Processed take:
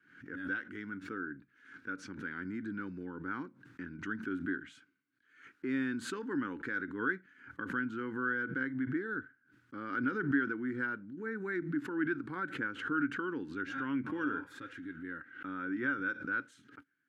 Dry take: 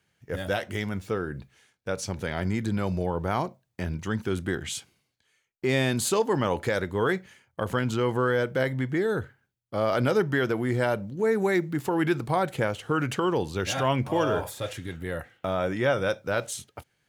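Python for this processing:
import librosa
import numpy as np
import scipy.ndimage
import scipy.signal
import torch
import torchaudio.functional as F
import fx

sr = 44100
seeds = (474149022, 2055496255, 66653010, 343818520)

y = fx.double_bandpass(x, sr, hz=650.0, octaves=2.4)
y = fx.peak_eq(y, sr, hz=540.0, db=2.5, octaves=0.77)
y = fx.pre_swell(y, sr, db_per_s=93.0)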